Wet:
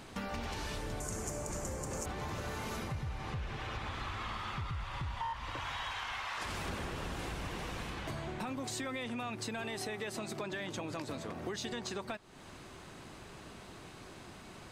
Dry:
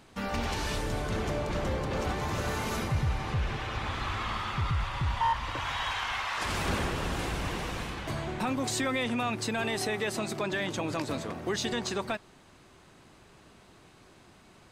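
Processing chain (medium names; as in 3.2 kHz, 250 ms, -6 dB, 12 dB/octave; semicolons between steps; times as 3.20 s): 1.00–2.06 s: resonant high shelf 5.2 kHz +12.5 dB, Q 3; compression 4:1, threshold -45 dBFS, peak gain reduction 17.5 dB; trim +5.5 dB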